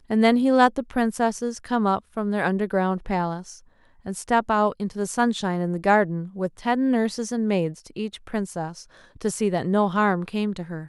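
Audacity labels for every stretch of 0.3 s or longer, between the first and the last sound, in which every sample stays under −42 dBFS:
3.590000	4.050000	silence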